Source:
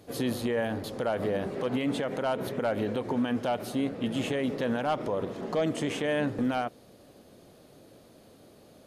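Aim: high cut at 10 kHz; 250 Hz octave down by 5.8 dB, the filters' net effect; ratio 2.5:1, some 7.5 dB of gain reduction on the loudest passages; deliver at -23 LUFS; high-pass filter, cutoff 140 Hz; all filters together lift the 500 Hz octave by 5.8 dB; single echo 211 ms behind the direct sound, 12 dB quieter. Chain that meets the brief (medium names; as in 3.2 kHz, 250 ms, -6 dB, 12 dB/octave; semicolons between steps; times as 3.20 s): high-pass 140 Hz; low-pass 10 kHz; peaking EQ 250 Hz -9 dB; peaking EQ 500 Hz +9 dB; compression 2.5:1, threshold -31 dBFS; delay 211 ms -12 dB; trim +10 dB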